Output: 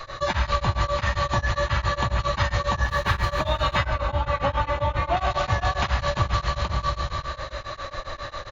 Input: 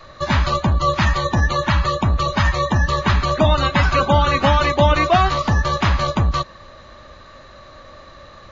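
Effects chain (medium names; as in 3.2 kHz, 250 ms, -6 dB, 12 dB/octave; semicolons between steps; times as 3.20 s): 2.83–3.29 s: median filter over 5 samples; peaking EQ 240 Hz -11 dB 1.1 oct; delay 480 ms -7.5 dB; plate-style reverb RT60 1.8 s, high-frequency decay 1×, DRR 0.5 dB; compression 8:1, threshold -26 dBFS, peak gain reduction 17.5 dB; 3.83–5.17 s: treble shelf 2.7 kHz -11 dB; tremolo of two beating tones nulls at 7.4 Hz; trim +8 dB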